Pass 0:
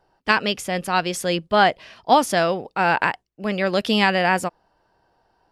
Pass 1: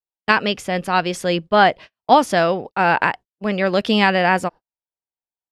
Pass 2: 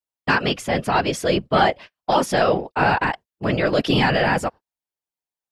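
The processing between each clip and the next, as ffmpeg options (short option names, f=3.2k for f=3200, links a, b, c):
-af "agate=range=-44dB:threshold=-35dB:ratio=16:detection=peak,lowpass=f=3.9k:p=1,volume=3dB"
-af "apsyclip=13dB,afftfilt=real='hypot(re,im)*cos(2*PI*random(0))':imag='hypot(re,im)*sin(2*PI*random(1))':win_size=512:overlap=0.75,volume=-6dB"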